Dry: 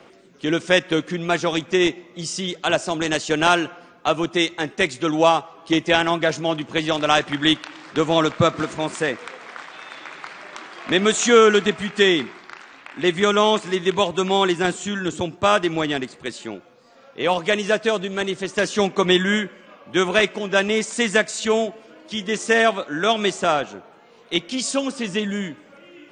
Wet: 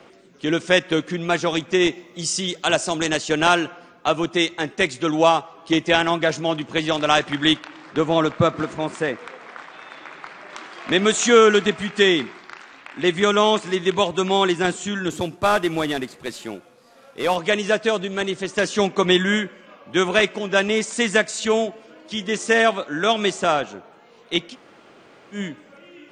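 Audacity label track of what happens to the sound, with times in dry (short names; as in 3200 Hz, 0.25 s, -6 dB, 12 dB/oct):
1.920000	3.070000	high shelf 5600 Hz +9 dB
7.590000	10.500000	high shelf 2700 Hz -7.5 dB
15.100000	17.360000	CVSD 64 kbps
24.510000	25.360000	room tone, crossfade 0.10 s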